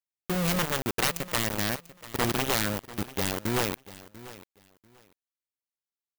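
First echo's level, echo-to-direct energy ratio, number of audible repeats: -17.5 dB, -17.5 dB, 2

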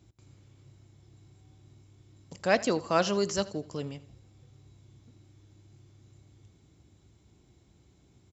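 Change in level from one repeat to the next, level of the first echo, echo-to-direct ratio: -7.5 dB, -19.0 dB, -18.0 dB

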